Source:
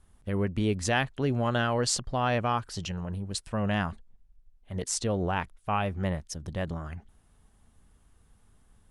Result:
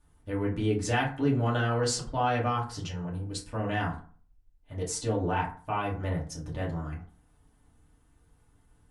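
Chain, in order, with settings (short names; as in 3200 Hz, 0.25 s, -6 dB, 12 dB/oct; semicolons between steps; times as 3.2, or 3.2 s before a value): FDN reverb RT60 0.43 s, low-frequency decay 1.1×, high-frequency decay 0.5×, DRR -5 dB; gain -7 dB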